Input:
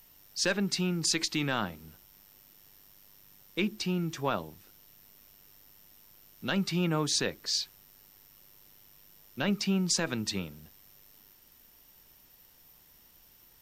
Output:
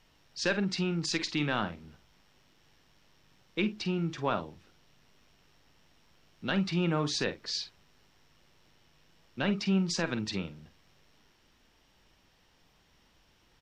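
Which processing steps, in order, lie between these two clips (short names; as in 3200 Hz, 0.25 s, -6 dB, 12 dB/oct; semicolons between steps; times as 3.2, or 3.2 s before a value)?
LPF 4200 Hz 12 dB/oct; doubler 47 ms -11.5 dB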